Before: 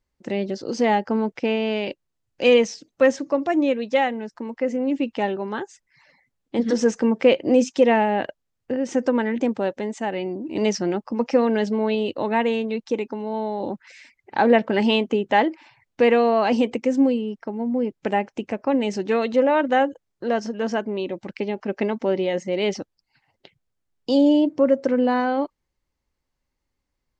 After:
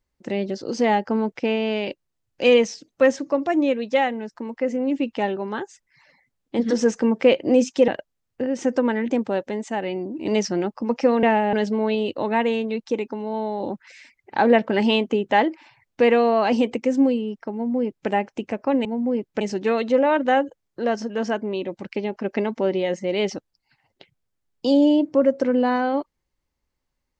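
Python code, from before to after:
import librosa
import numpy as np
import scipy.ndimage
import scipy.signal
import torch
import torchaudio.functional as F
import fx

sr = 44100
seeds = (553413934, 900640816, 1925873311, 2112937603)

y = fx.edit(x, sr, fx.move(start_s=7.88, length_s=0.3, to_s=11.53),
    fx.duplicate(start_s=17.53, length_s=0.56, to_s=18.85), tone=tone)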